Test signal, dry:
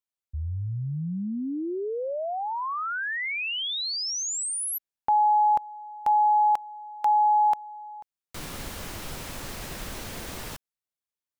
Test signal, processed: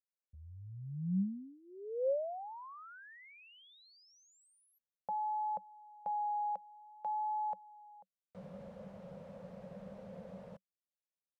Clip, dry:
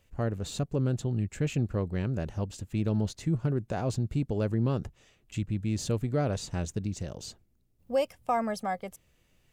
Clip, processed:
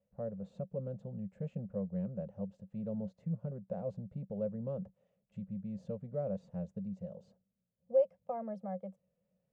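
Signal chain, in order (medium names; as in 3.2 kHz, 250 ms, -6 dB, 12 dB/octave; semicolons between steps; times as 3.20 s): wow and flutter 0.53 Hz 20 cents; two resonant band-passes 320 Hz, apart 1.5 oct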